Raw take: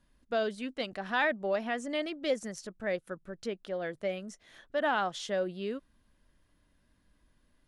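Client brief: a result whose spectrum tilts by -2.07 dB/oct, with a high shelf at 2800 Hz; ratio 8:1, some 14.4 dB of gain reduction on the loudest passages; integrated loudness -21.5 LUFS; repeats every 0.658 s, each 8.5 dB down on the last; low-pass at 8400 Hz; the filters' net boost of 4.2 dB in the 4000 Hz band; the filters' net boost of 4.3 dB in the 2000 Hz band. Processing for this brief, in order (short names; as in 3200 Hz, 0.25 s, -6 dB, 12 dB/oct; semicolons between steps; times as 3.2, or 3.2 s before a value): LPF 8400 Hz; bell 2000 Hz +5.5 dB; high shelf 2800 Hz -4 dB; bell 4000 Hz +6.5 dB; compressor 8:1, threshold -36 dBFS; feedback echo 0.658 s, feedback 38%, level -8.5 dB; gain +19 dB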